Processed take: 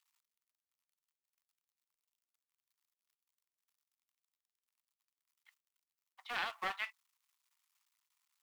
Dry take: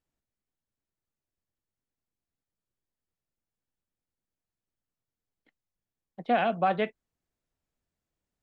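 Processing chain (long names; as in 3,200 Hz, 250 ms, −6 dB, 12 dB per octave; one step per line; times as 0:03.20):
mu-law and A-law mismatch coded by mu
Butterworth high-pass 940 Hz 48 dB per octave
parametric band 1,600 Hz −6 dB 0.32 octaves
highs frequency-modulated by the lows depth 0.2 ms
level −3 dB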